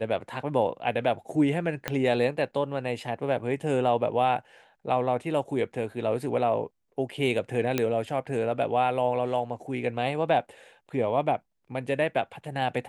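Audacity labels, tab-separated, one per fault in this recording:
1.880000	1.880000	pop -12 dBFS
7.780000	7.780000	pop -10 dBFS

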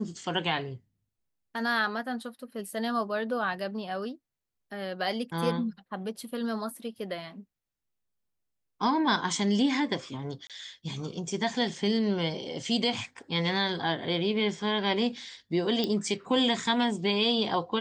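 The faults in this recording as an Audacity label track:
10.470000	10.500000	gap 27 ms
15.840000	15.840000	pop -17 dBFS

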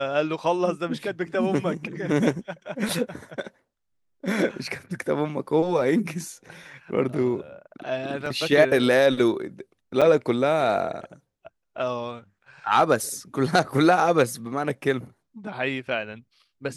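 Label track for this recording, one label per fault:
8.260000	8.260000	gap 2.9 ms
10.010000	10.020000	gap 6.1 ms

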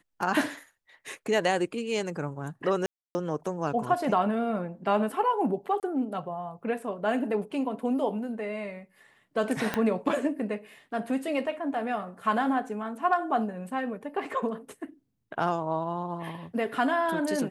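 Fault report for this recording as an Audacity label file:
2.860000	3.150000	gap 0.29 s
5.800000	5.830000	gap 28 ms
9.740000	9.740000	pop -13 dBFS

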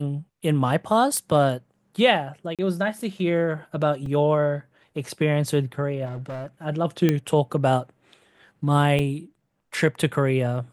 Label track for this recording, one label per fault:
1.170000	1.170000	pop -13 dBFS
2.550000	2.590000	gap 37 ms
4.060000	4.060000	gap 2.5 ms
6.050000	6.460000	clipped -29 dBFS
7.090000	7.090000	pop -8 dBFS
8.990000	8.990000	gap 3.7 ms

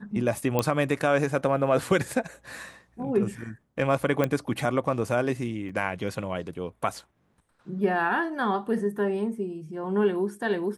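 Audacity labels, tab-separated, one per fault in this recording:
0.590000	0.590000	pop -10 dBFS
4.240000	4.240000	pop -12 dBFS
5.690000	5.700000	gap 5 ms

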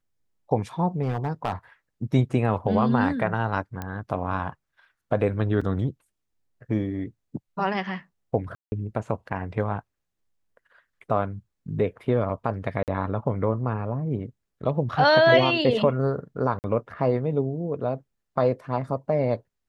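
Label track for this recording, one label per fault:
1.030000	1.530000	clipped -20 dBFS
3.820000	3.820000	pop -18 dBFS
5.610000	5.610000	gap 4.6 ms
8.550000	8.720000	gap 0.17 s
12.830000	12.880000	gap 48 ms
16.590000	16.640000	gap 49 ms

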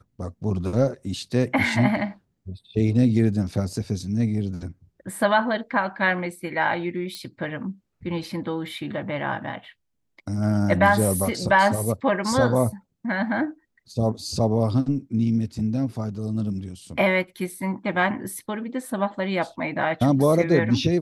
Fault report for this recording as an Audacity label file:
7.150000	7.150000	pop -20 dBFS

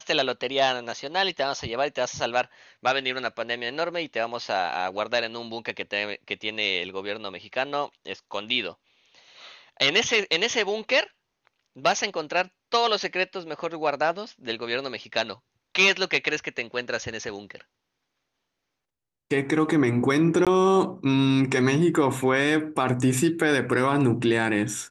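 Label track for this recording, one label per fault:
20.450000	20.470000	gap 17 ms

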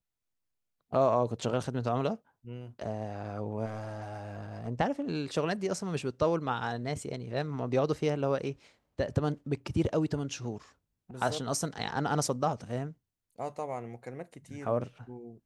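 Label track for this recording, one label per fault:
3.660000	4.680000	clipped -33 dBFS

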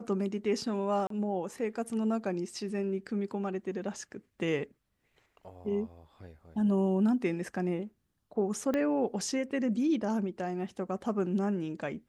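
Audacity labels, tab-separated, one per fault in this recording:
1.070000	1.100000	gap 33 ms
8.740000	8.740000	pop -19 dBFS

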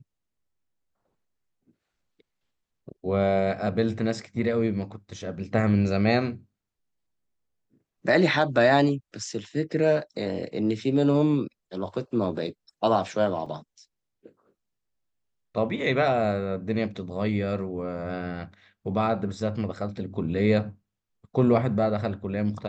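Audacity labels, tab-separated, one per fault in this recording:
13.460000	13.460000	gap 3.9 ms

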